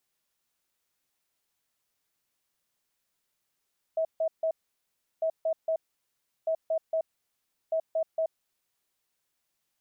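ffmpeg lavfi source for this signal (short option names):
-f lavfi -i "aevalsrc='0.0631*sin(2*PI*645*t)*clip(min(mod(mod(t,1.25),0.23),0.08-mod(mod(t,1.25),0.23))/0.005,0,1)*lt(mod(t,1.25),0.69)':d=5:s=44100"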